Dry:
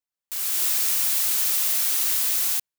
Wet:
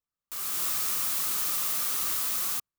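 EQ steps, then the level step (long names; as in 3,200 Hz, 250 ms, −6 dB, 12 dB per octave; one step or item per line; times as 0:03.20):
low-shelf EQ 190 Hz +5 dB
low-shelf EQ 410 Hz +10.5 dB
parametric band 1,200 Hz +12.5 dB 0.37 octaves
−6.5 dB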